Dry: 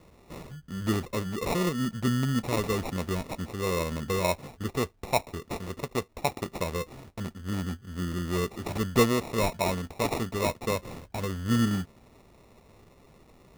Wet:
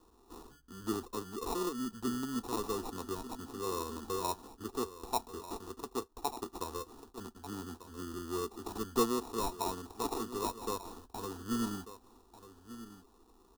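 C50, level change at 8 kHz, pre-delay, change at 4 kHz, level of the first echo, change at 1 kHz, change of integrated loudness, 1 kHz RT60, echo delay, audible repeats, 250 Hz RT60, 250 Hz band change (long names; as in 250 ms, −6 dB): no reverb audible, −4.5 dB, no reverb audible, −8.0 dB, −14.0 dB, −5.0 dB, −8.5 dB, no reverb audible, 1,192 ms, 1, no reverb audible, −8.5 dB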